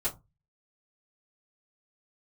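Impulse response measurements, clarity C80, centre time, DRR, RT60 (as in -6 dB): 24.0 dB, 14 ms, -11.5 dB, no single decay rate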